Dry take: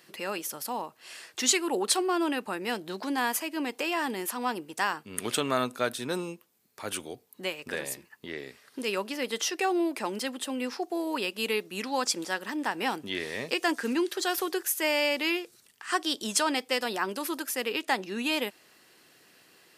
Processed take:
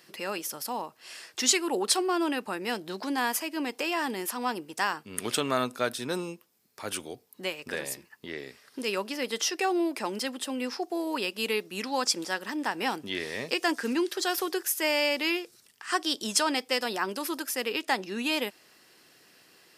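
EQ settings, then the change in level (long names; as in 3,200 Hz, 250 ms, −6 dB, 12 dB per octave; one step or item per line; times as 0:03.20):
parametric band 5,200 Hz +5 dB 0.24 octaves
0.0 dB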